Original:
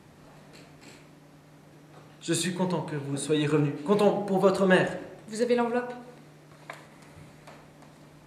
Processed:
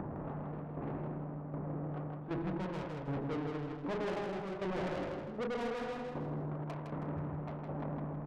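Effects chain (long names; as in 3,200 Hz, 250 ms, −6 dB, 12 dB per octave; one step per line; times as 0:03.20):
wavefolder on the positive side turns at −21.5 dBFS
reversed playback
downward compressor 8 to 1, threshold −37 dBFS, peak gain reduction 19.5 dB
reversed playback
low-pass filter 1,100 Hz 24 dB per octave
tube saturation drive 50 dB, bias 0.45
shaped tremolo saw down 1.3 Hz, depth 80%
upward compression, threshold −56 dBFS
on a send: repeating echo 160 ms, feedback 34%, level −4.5 dB
on the sum: level +16 dB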